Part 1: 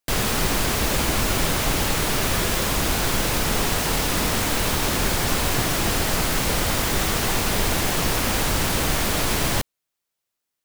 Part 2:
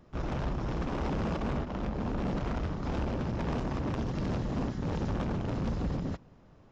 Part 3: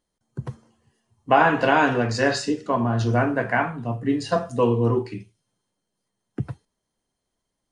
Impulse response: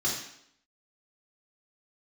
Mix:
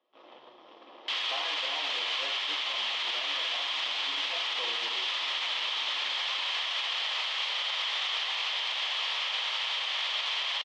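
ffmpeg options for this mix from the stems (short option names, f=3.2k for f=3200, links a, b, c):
-filter_complex "[0:a]highpass=1.1k,adelay=1000,volume=0dB,asplit=2[a][b];[b]volume=-21.5dB[c];[1:a]volume=-9.5dB,asplit=2[d][e];[e]volume=-12.5dB[f];[2:a]volume=-14.5dB,asplit=3[g][h][i];[h]volume=-15dB[j];[i]apad=whole_len=295915[k];[d][k]sidechaincompress=threshold=-43dB:ratio=8:attack=21:release=209[l];[3:a]atrim=start_sample=2205[m];[c][f][j]amix=inputs=3:normalize=0[n];[n][m]afir=irnorm=-1:irlink=0[o];[a][l][g][o]amix=inputs=4:normalize=0,highpass=f=470:w=0.5412,highpass=f=470:w=1.3066,equalizer=f=480:t=q:w=4:g=-3,equalizer=f=710:t=q:w=4:g=-4,equalizer=f=1.5k:t=q:w=4:g=-10,equalizer=f=3.2k:t=q:w=4:g=10,lowpass=f=4.1k:w=0.5412,lowpass=f=4.1k:w=1.3066,alimiter=limit=-22.5dB:level=0:latency=1:release=65"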